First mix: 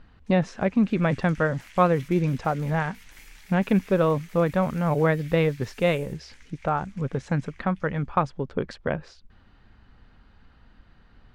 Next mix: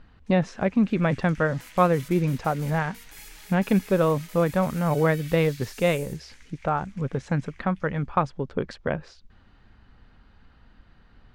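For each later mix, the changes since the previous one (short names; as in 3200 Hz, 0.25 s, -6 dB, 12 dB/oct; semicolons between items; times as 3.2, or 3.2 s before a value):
second sound +10.0 dB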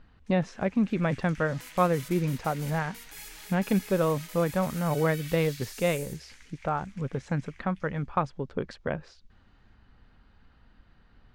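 speech -4.0 dB; second sound: send on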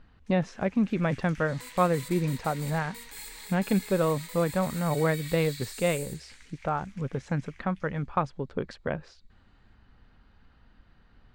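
second sound: add ripple EQ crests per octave 0.99, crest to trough 13 dB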